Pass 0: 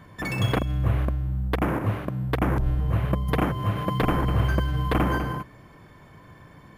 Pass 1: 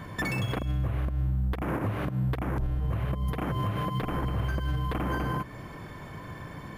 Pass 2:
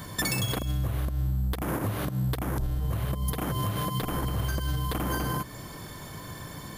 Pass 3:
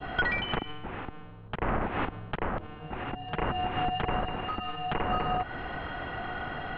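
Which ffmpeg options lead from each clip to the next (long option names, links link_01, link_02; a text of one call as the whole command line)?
ffmpeg -i in.wav -af "acompressor=threshold=-28dB:ratio=6,alimiter=level_in=4.5dB:limit=-24dB:level=0:latency=1:release=188,volume=-4.5dB,volume=7.5dB" out.wav
ffmpeg -i in.wav -af "aexciter=amount=5:drive=3.9:freq=3500" out.wav
ffmpeg -i in.wav -af "acompressor=threshold=-30dB:ratio=6,adynamicequalizer=threshold=0.00251:dfrequency=1900:dqfactor=0.73:tfrequency=1900:tqfactor=0.73:attack=5:release=100:ratio=0.375:range=2:mode=boostabove:tftype=bell,highpass=frequency=260:width_type=q:width=0.5412,highpass=frequency=260:width_type=q:width=1.307,lowpass=frequency=3100:width_type=q:width=0.5176,lowpass=frequency=3100:width_type=q:width=0.7071,lowpass=frequency=3100:width_type=q:width=1.932,afreqshift=-300,volume=7.5dB" out.wav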